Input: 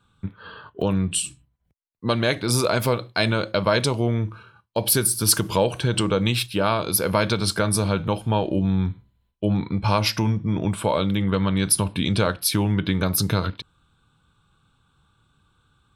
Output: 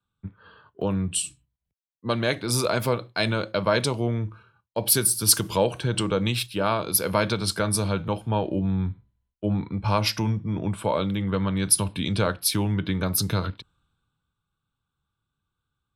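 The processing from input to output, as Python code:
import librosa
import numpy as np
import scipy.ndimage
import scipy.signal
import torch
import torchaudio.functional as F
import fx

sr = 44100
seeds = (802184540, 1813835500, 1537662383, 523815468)

y = fx.band_widen(x, sr, depth_pct=40)
y = y * 10.0 ** (-3.0 / 20.0)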